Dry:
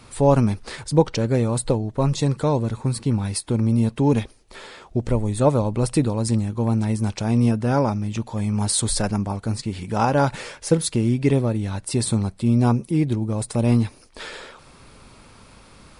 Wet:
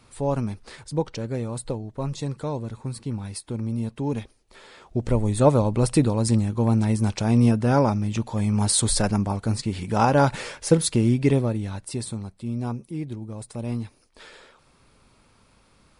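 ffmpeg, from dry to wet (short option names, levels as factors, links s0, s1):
-af "volume=1.06,afade=t=in:st=4.64:d=0.62:silence=0.354813,afade=t=out:st=11.06:d=1.09:silence=0.266073"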